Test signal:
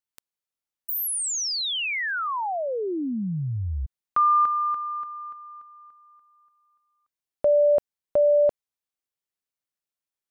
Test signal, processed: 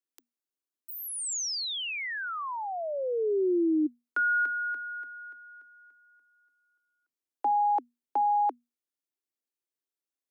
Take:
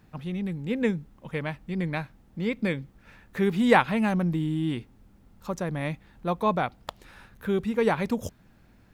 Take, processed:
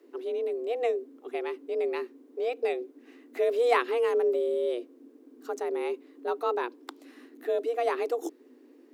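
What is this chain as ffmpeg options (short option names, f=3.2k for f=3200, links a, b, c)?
-filter_complex "[0:a]bass=f=250:g=10,treble=f=4k:g=3,afreqshift=240,acrossover=split=8300[a][b];[b]acompressor=threshold=-33dB:ratio=4:attack=1:release=60[c];[a][c]amix=inputs=2:normalize=0,volume=-7dB"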